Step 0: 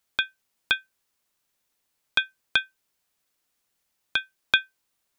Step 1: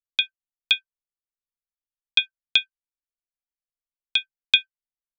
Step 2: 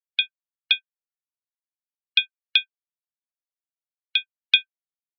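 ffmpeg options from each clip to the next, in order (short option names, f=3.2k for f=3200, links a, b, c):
-af "lowpass=f=7.4k:w=0.5412,lowpass=f=7.4k:w=1.3066,anlmdn=0.00631,highshelf=f=2.1k:t=q:w=3:g=9,volume=-7dB"
-af "afftdn=nr=23:nf=-38"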